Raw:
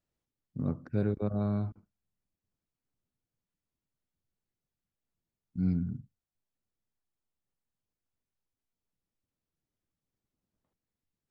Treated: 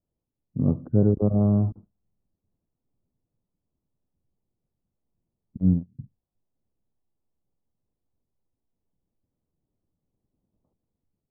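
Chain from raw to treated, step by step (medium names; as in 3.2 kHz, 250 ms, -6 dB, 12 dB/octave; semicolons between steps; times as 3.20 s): Bessel low-pass 630 Hz, order 8; 5.57–5.99 s: gate -27 dBFS, range -36 dB; level rider gain up to 6 dB; trim +4.5 dB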